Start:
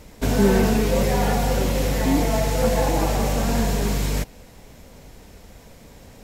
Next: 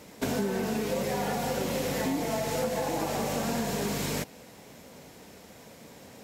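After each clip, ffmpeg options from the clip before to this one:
-af "highpass=160,acompressor=threshold=-25dB:ratio=10,volume=-1dB"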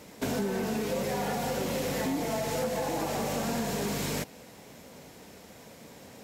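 -af "asoftclip=type=tanh:threshold=-21dB"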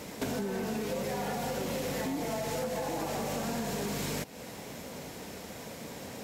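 -af "acompressor=threshold=-41dB:ratio=3,volume=6.5dB"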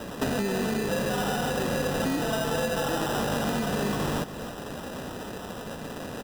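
-af "acrusher=samples=20:mix=1:aa=0.000001,aecho=1:1:286:0.237,volume=6dB"

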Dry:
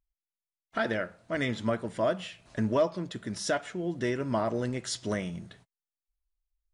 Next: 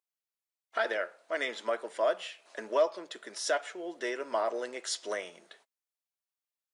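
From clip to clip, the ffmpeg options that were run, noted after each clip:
-af "highpass=f=420:w=0.5412,highpass=f=420:w=1.3066"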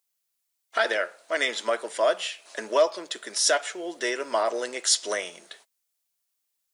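-af "highshelf=f=3.4k:g=11,volume=5dB"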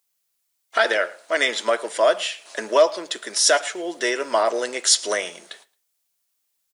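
-af "aecho=1:1:111|222:0.0794|0.0127,volume=5dB"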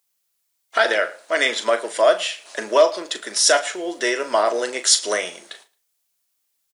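-filter_complex "[0:a]asplit=2[a][b];[b]adelay=38,volume=-10.5dB[c];[a][c]amix=inputs=2:normalize=0,volume=1dB"

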